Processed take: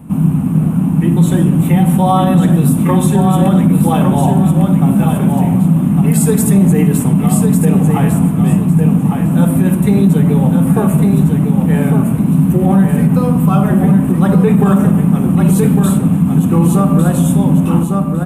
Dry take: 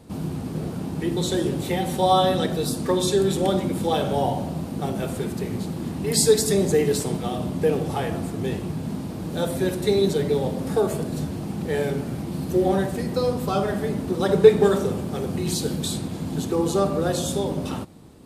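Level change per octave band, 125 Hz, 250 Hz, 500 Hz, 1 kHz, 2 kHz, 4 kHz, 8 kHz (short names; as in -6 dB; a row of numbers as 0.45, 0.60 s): +18.0 dB, +16.5 dB, +1.5 dB, +8.0 dB, +6.0 dB, n/a, +5.0 dB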